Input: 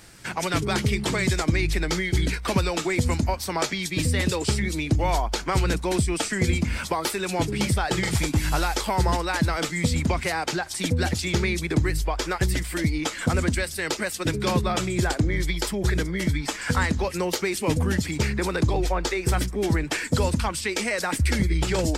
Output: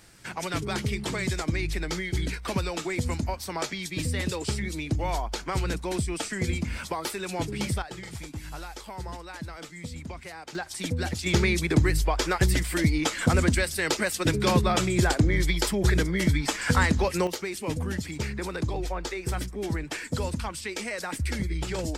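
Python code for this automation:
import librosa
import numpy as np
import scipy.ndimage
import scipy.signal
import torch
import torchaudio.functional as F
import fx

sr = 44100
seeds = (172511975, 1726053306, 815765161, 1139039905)

y = fx.gain(x, sr, db=fx.steps((0.0, -5.5), (7.82, -15.0), (10.55, -5.5), (11.26, 1.0), (17.27, -7.0)))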